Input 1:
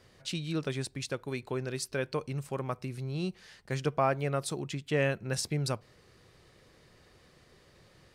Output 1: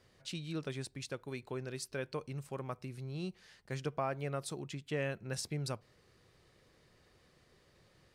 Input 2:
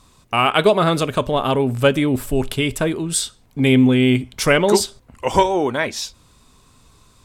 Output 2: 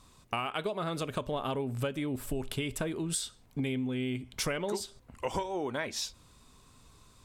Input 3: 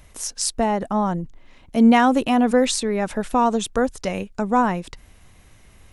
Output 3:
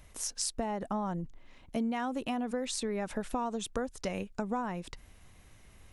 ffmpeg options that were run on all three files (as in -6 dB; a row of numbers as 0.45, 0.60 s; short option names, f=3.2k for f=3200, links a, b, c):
-af "acompressor=threshold=-23dB:ratio=12,volume=-6.5dB"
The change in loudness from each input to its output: -7.0, -16.5, -14.5 LU